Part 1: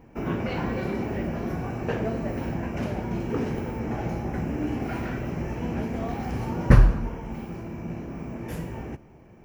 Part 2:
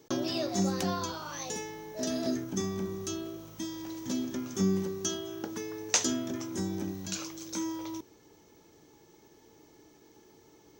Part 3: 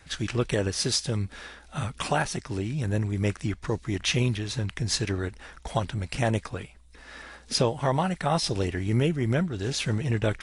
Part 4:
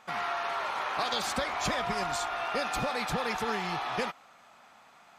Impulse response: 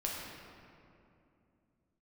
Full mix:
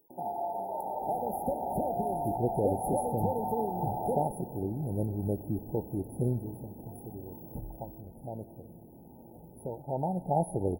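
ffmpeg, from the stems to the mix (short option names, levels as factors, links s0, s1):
-filter_complex "[0:a]acompressor=threshold=0.02:ratio=1.5,acrusher=samples=30:mix=1:aa=0.000001:lfo=1:lforange=18:lforate=0.75,adelay=850,volume=0.2[s0];[1:a]acompressor=threshold=0.01:ratio=3,crystalizer=i=3:c=0,volume=0.251[s1];[2:a]adelay=2050,volume=2.82,afade=t=out:st=6.28:d=0.39:silence=0.281838,afade=t=in:st=9.78:d=0.46:silence=0.251189,asplit=2[s2][s3];[s3]volume=0.133[s4];[3:a]adelay=100,volume=1.12,asplit=2[s5][s6];[s6]volume=0.266[s7];[4:a]atrim=start_sample=2205[s8];[s4][s7]amix=inputs=2:normalize=0[s9];[s9][s8]afir=irnorm=-1:irlink=0[s10];[s0][s1][s2][s5][s10]amix=inputs=5:normalize=0,afftfilt=real='re*(1-between(b*sr/4096,920,10000))':imag='im*(1-between(b*sr/4096,920,10000))':win_size=4096:overlap=0.75,lowshelf=f=120:g=-7"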